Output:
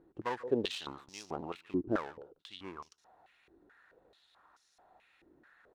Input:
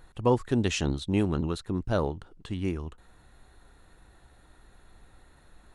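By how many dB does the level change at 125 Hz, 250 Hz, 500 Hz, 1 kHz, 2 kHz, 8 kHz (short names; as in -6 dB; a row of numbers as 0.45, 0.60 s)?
-20.0, -10.0, -8.0, -6.0, -6.5, -12.5 dB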